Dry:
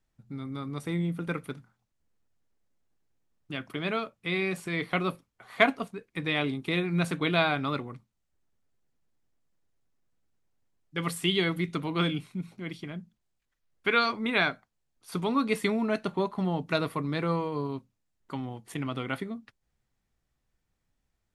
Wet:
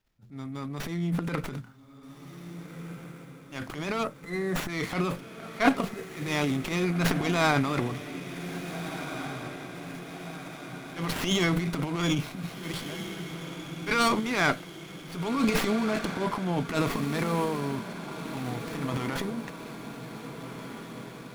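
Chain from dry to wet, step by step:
high-shelf EQ 5,800 Hz +10.5 dB
transient designer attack −10 dB, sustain +12 dB
gain on a spectral selection 0:04.05–0:04.69, 2,100–5,500 Hz −25 dB
on a send: feedback delay with all-pass diffusion 1,663 ms, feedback 60%, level −10 dB
on the sum: windowed peak hold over 5 samples

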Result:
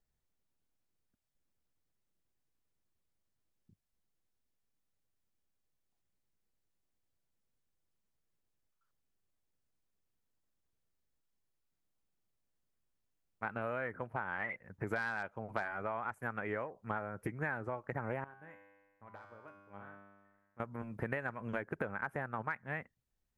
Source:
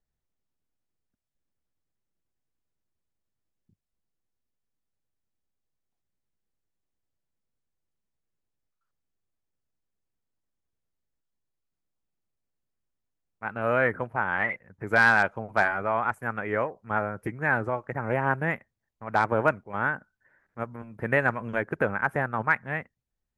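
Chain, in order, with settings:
downward compressor 12 to 1, threshold −34 dBFS, peak gain reduction 19 dB
0:18.24–0:20.60: tuned comb filter 100 Hz, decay 1.4 s, harmonics all, mix 90%

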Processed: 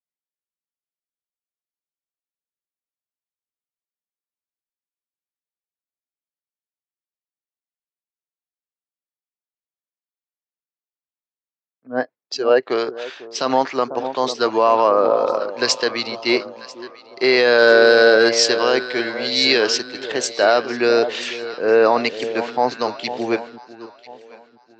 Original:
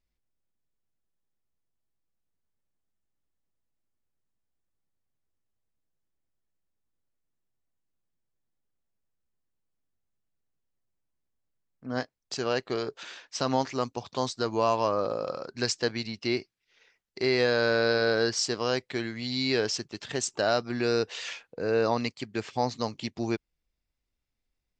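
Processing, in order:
0:11.87–0:12.63: expanding power law on the bin magnitudes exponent 1.5
0:17.58–0:18.29: leveller curve on the samples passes 1
band-pass filter 350–4,300 Hz
delay that swaps between a low-pass and a high-pass 497 ms, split 940 Hz, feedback 70%, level −10 dB
boost into a limiter +18 dB
multiband upward and downward expander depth 70%
level −4 dB

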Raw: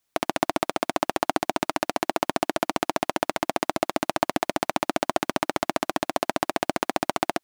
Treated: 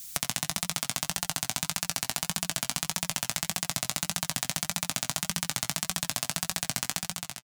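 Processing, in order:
fade-out on the ending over 0.96 s
drawn EQ curve 180 Hz 0 dB, 320 Hz −27 dB, 7,100 Hz +8 dB
in parallel at −1 dB: output level in coarse steps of 19 dB
on the sum: brickwall limiter −5.5 dBFS, peak gain reduction 6 dB
flanger 1.7 Hz, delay 5 ms, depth 3.3 ms, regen +50%
on a send: single-tap delay 85 ms −7.5 dB
on the sum: multiband upward and downward compressor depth 70%
level +7 dB

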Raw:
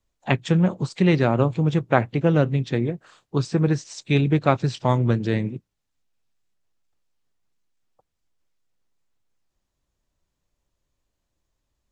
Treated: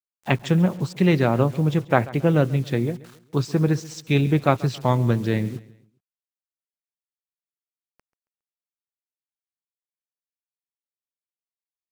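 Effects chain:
bit reduction 8 bits
repeating echo 137 ms, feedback 40%, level −20 dB

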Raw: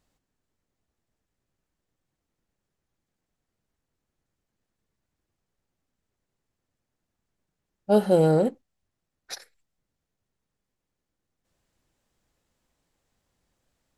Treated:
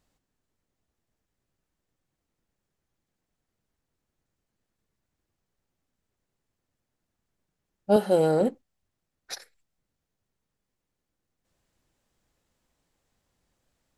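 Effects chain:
0:07.96–0:08.41: high-pass filter 340 Hz 6 dB per octave

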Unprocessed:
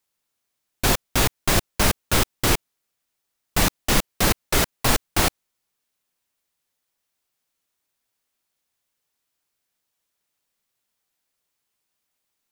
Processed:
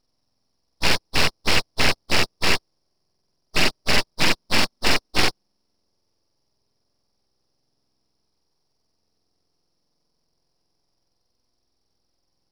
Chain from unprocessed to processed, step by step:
hearing-aid frequency compression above 1,500 Hz 4 to 1
full-wave rectification

